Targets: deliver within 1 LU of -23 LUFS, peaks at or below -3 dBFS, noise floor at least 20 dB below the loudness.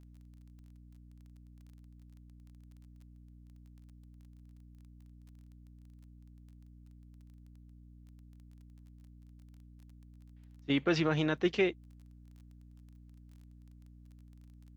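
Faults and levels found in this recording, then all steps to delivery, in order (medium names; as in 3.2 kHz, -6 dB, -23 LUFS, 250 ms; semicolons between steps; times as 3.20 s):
tick rate 21 per s; hum 60 Hz; highest harmonic 300 Hz; hum level -53 dBFS; loudness -31.0 LUFS; peak level -15.0 dBFS; loudness target -23.0 LUFS
-> de-click; hum notches 60/120/180/240/300 Hz; trim +8 dB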